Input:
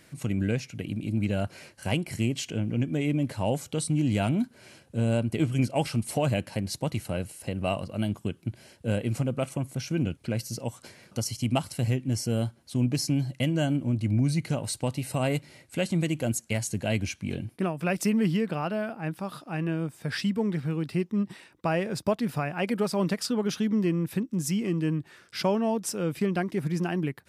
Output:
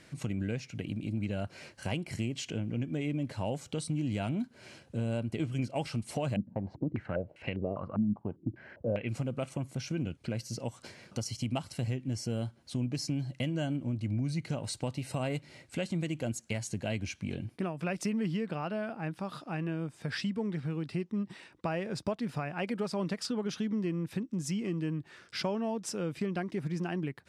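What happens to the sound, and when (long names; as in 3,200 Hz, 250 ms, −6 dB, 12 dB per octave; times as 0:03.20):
0:06.36–0:09.09: low-pass on a step sequencer 5 Hz 220–2,400 Hz
whole clip: low-pass filter 7,500 Hz 12 dB per octave; downward compressor 2 to 1, threshold −35 dBFS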